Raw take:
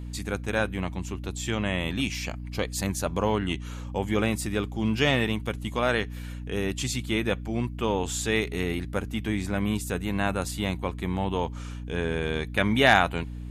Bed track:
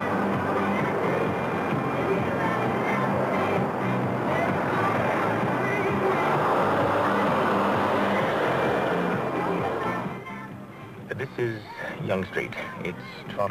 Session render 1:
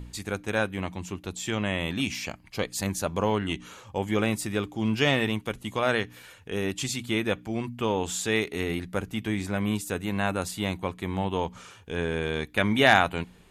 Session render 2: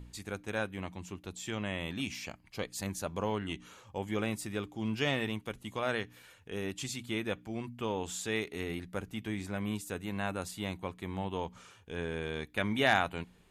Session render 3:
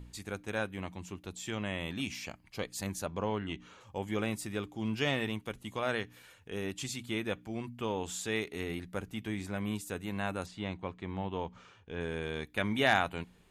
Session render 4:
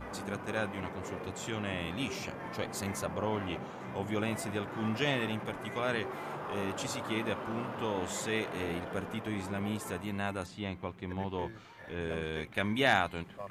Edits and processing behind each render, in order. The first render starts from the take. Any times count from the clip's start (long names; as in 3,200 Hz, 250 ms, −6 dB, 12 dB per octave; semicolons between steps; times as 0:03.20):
hum removal 60 Hz, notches 5
level −8 dB
0:03.06–0:03.81: high-frequency loss of the air 92 metres; 0:10.46–0:12.01: high-frequency loss of the air 130 metres
mix in bed track −17 dB